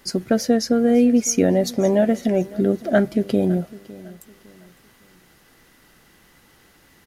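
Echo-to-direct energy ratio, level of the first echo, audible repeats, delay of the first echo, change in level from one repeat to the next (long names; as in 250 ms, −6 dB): −19.5 dB, −20.0 dB, 2, 557 ms, −9.5 dB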